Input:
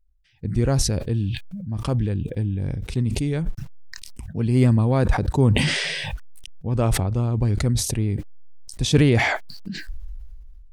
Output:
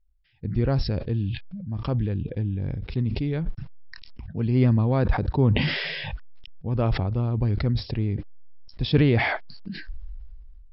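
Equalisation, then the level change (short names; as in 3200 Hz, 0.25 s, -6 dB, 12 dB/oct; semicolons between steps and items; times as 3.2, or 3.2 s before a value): brick-wall FIR low-pass 5500 Hz; air absorption 90 m; -2.5 dB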